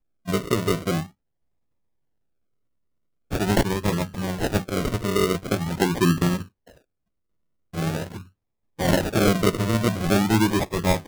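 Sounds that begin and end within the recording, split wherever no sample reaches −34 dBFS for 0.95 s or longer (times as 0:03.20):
0:03.31–0:06.43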